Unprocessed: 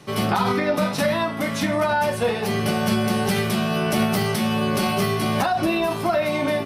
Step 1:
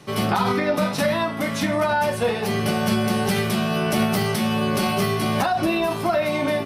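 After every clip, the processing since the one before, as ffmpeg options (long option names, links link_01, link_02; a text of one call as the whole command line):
ffmpeg -i in.wav -af anull out.wav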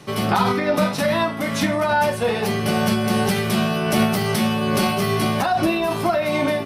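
ffmpeg -i in.wav -af "tremolo=f=2.5:d=0.3,volume=3dB" out.wav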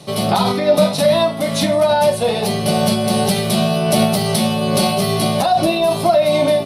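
ffmpeg -i in.wav -af "equalizer=frequency=160:width_type=o:width=0.67:gain=7,equalizer=frequency=630:width_type=o:width=0.67:gain=10,equalizer=frequency=1600:width_type=o:width=0.67:gain=-6,equalizer=frequency=4000:width_type=o:width=0.67:gain=10,equalizer=frequency=10000:width_type=o:width=0.67:gain=10,volume=-1dB" out.wav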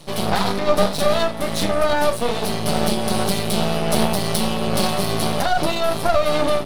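ffmpeg -i in.wav -af "aeval=exprs='max(val(0),0)':channel_layout=same" out.wav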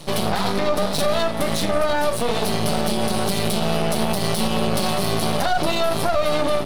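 ffmpeg -i in.wav -af "alimiter=limit=-13.5dB:level=0:latency=1:release=110,volume=4.5dB" out.wav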